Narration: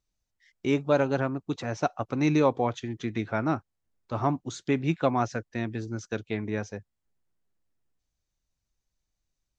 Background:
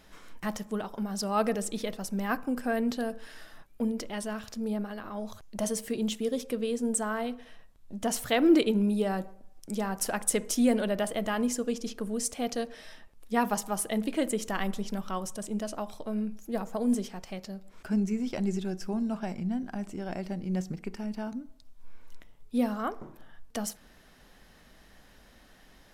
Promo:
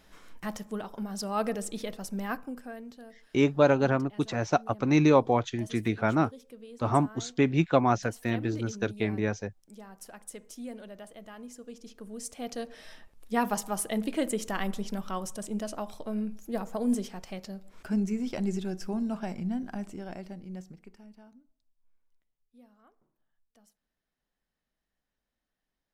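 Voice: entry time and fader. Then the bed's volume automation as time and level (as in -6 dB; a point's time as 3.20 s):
2.70 s, +2.0 dB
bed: 2.27 s -2.5 dB
2.88 s -16.5 dB
11.47 s -16.5 dB
12.92 s -0.5 dB
19.77 s -0.5 dB
22.15 s -30 dB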